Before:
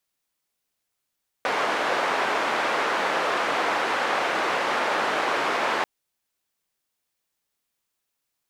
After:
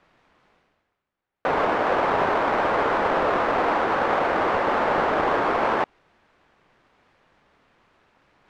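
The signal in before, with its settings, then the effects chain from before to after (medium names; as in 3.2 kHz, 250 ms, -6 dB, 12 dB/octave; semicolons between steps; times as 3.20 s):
noise band 430–1400 Hz, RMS -24.5 dBFS 4.39 s
square wave that keeps the level; low-pass 1.7 kHz 12 dB/octave; reverse; upward compressor, threshold -42 dBFS; reverse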